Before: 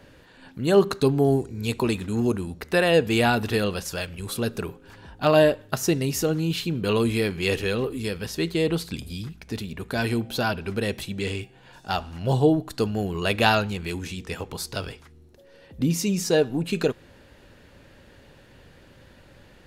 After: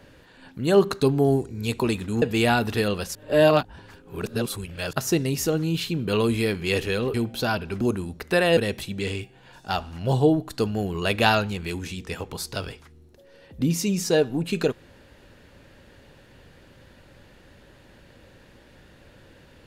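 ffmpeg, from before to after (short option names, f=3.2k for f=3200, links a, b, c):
-filter_complex "[0:a]asplit=7[a][b][c][d][e][f][g];[a]atrim=end=2.222[h];[b]atrim=start=2.978:end=3.912[i];[c]atrim=start=3.908:end=5.692,asetpts=PTS-STARTPTS,areverse[j];[d]atrim=start=5.688:end=7.902[k];[e]atrim=start=10.098:end=10.772[l];[f]atrim=start=2.218:end=2.982[m];[g]atrim=start=10.768[n];[h][i]acrossfade=d=0.004:c1=hsin:c2=hsin[o];[o][j]acrossfade=d=0.004:c1=hsin:c2=hsin[p];[p][k]acrossfade=d=0.004:c1=hsin:c2=hsin[q];[q][l]acrossfade=d=0.004:c1=hsin:c2=hsin[r];[r][m]acrossfade=d=0.004:c1=hsin:c2=hsin[s];[s][n]acrossfade=d=0.004:c1=hsin:c2=hsin"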